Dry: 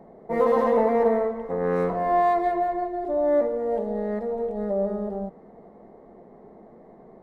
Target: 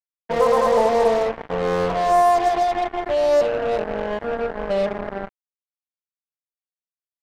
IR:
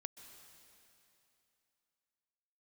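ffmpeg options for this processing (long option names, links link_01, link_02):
-filter_complex "[0:a]equalizer=frequency=270:width=1.4:gain=-14,asplit=2[link_01][link_02];[link_02]asplit=3[link_03][link_04][link_05];[link_03]adelay=260,afreqshift=84,volume=-21dB[link_06];[link_04]adelay=520,afreqshift=168,volume=-30.1dB[link_07];[link_05]adelay=780,afreqshift=252,volume=-39.2dB[link_08];[link_06][link_07][link_08]amix=inputs=3:normalize=0[link_09];[link_01][link_09]amix=inputs=2:normalize=0,acrusher=bits=4:mix=0:aa=0.5,highshelf=frequency=2400:gain=-9.5,volume=7.5dB"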